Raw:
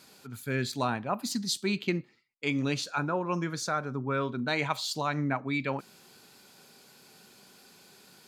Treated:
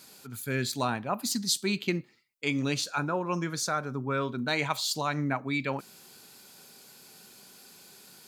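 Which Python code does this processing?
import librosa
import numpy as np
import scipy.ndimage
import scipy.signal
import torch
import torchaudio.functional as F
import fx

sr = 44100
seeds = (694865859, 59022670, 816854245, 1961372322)

y = fx.high_shelf(x, sr, hz=6200.0, db=9.0)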